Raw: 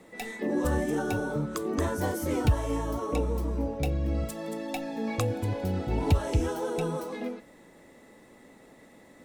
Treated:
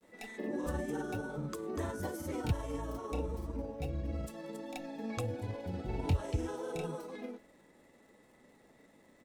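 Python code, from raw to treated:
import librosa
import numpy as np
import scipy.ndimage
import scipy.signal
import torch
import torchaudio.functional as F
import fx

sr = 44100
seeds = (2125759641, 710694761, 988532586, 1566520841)

y = fx.granulator(x, sr, seeds[0], grain_ms=100.0, per_s=20.0, spray_ms=30.0, spread_st=0)
y = fx.dmg_crackle(y, sr, seeds[1], per_s=140.0, level_db=-54.0)
y = F.gain(torch.from_numpy(y), -7.5).numpy()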